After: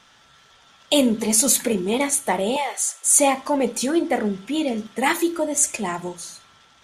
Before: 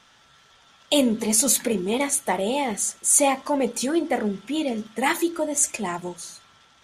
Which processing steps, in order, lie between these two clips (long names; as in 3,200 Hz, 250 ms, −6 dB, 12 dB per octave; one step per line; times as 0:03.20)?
0:02.56–0:03.06: high-pass filter 560 Hz 24 dB per octave
four-comb reverb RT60 0.34 s, combs from 32 ms, DRR 18 dB
level +2 dB